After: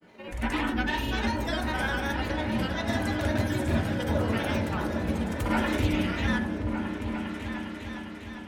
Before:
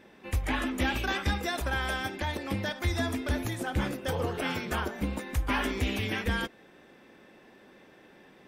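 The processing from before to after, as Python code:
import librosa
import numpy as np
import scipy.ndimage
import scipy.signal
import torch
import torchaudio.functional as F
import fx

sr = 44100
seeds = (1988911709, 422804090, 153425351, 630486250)

y = fx.granulator(x, sr, seeds[0], grain_ms=100.0, per_s=20.0, spray_ms=100.0, spread_st=3)
y = fx.echo_opening(y, sr, ms=404, hz=200, octaves=2, feedback_pct=70, wet_db=-3)
y = fx.rev_fdn(y, sr, rt60_s=0.7, lf_ratio=1.45, hf_ratio=0.25, size_ms=10.0, drr_db=2.5)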